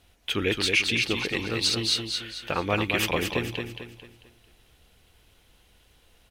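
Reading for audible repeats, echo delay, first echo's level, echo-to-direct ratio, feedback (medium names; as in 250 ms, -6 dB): 4, 222 ms, -5.0 dB, -4.5 dB, 39%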